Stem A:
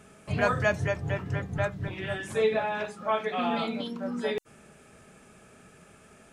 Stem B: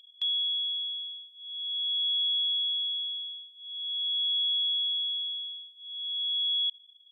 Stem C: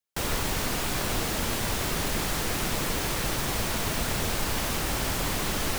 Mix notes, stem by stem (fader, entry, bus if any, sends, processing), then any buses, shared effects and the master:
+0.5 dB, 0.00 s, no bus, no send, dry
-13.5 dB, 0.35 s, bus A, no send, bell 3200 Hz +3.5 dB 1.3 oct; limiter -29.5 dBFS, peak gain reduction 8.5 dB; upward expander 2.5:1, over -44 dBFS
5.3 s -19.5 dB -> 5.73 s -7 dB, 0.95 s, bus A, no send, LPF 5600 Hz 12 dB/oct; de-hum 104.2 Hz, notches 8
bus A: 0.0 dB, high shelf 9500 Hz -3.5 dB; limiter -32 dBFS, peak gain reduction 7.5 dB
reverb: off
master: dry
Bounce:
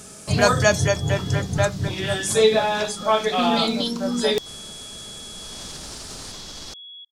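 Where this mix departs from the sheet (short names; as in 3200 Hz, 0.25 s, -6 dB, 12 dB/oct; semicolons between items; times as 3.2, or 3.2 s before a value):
stem A +0.5 dB -> +8.5 dB; master: extra resonant high shelf 3400 Hz +11.5 dB, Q 1.5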